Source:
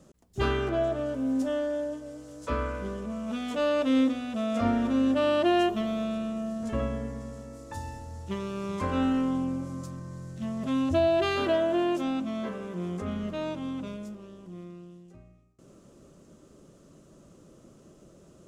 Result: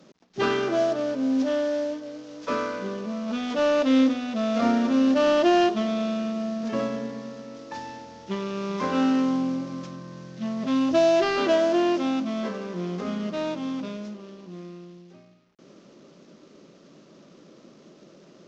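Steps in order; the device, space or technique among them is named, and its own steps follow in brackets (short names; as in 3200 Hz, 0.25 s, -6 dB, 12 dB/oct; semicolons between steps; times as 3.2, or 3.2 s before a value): early wireless headset (HPF 170 Hz 24 dB/oct; CVSD 32 kbps); gain +4.5 dB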